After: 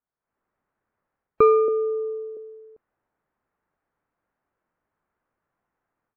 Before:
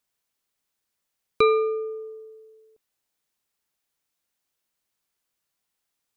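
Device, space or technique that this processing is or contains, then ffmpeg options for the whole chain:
action camera in a waterproof case: -filter_complex "[0:a]asettb=1/sr,asplit=3[link_01][link_02][link_03];[link_01]atrim=end=1.684[link_04];[link_02]atrim=start=1.68:end=2.37,asetpts=PTS-STARTPTS,afade=type=in:duration=0.004:curve=qsin,afade=type=out:start_time=0.686:duration=0.004:curve=qsin,highpass=frequency=250:width=0.5412,highpass=frequency=250:width=1.3066[link_05];[link_03]atrim=start=2.366[link_06];[link_04][link_05]acrossfade=duration=0.004:curve1=hsin:curve2=qsin[link_07];[link_07][link_06]acrossfade=duration=0.004:curve1=qsin:curve2=hsin,lowpass=frequency=1600:width=0.5412,lowpass=frequency=1600:width=1.3066,dynaudnorm=framelen=190:gausssize=3:maxgain=15dB,volume=-5dB" -ar 48000 -c:a aac -b:a 64k

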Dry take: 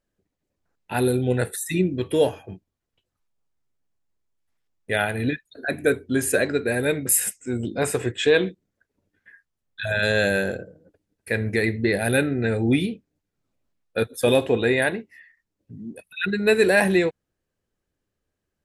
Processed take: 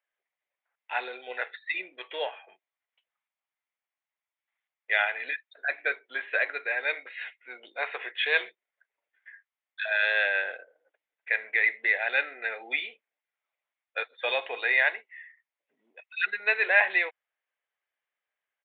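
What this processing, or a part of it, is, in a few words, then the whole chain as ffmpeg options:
musical greeting card: -af "aresample=8000,aresample=44100,highpass=frequency=690:width=0.5412,highpass=frequency=690:width=1.3066,equalizer=frequency=2100:width_type=o:width=0.45:gain=9,volume=-3dB"

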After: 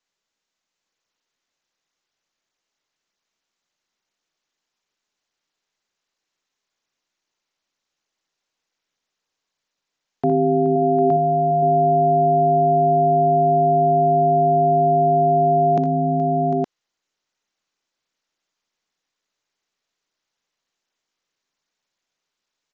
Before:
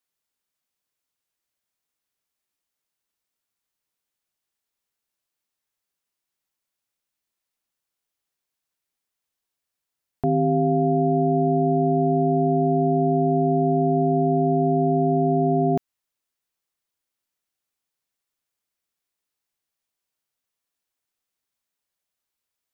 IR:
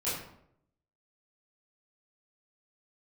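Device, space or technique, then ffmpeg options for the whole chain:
Bluetooth headset: -filter_complex "[0:a]asettb=1/sr,asplit=3[link_01][link_02][link_03];[link_01]atrim=end=10.284[link_04];[link_02]atrim=start=10.28:end=10.76,asetpts=PTS-STARTPTS,afade=type=in:duration=0.004:curve=qsin,afade=type=out:start_time=0.476:duration=0.004:curve=qsin,asplit=2[link_05][link_06];[link_06]adelay=18,volume=-8dB[link_07];[link_05][link_07]amix=inputs=2:normalize=0,atrim=end_sample=21168[link_08];[link_03]atrim=start=10.756[link_09];[link_04][link_08]acrossfade=duration=0.004:curve1=hsin:curve2=qsin[link_10];[link_10][link_09]acrossfade=duration=0.004:curve1=qsin:curve2=hsin,highpass=180,aecho=1:1:60|62|79|423|750|866:0.266|0.251|0.168|0.2|0.316|0.708,aresample=16000,aresample=44100,volume=4dB" -ar 16000 -c:a sbc -b:a 64k

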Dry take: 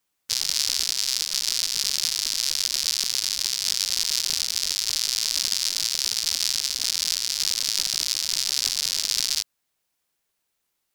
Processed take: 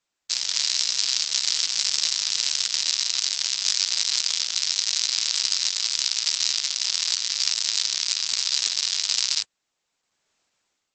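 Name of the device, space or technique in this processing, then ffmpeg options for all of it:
video call: -af "highpass=frequency=150:poles=1,dynaudnorm=framelen=240:gausssize=5:maxgain=11dB" -ar 48000 -c:a libopus -b:a 12k

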